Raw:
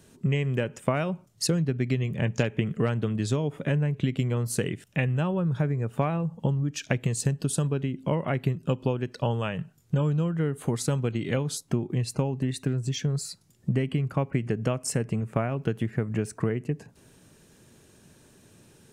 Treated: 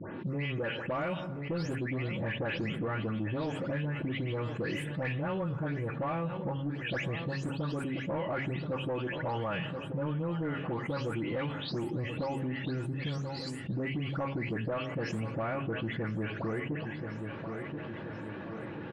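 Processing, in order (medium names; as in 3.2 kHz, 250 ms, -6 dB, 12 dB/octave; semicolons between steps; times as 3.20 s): delay that grows with frequency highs late, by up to 286 ms; high-pass 84 Hz; bass shelf 390 Hz -8 dB; comb 3.5 ms, depth 31%; de-hum 136.1 Hz, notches 3; saturation -27.5 dBFS, distortion -15 dB; level-controlled noise filter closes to 1.9 kHz, open at -33 dBFS; distance through air 380 m; feedback delay 1029 ms, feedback 36%, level -17 dB; reverberation RT60 1.0 s, pre-delay 5 ms, DRR 16 dB; level flattener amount 70%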